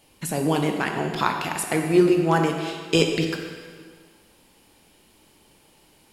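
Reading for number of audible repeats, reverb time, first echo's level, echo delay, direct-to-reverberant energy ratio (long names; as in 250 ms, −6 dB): no echo audible, 1.8 s, no echo audible, no echo audible, 3.0 dB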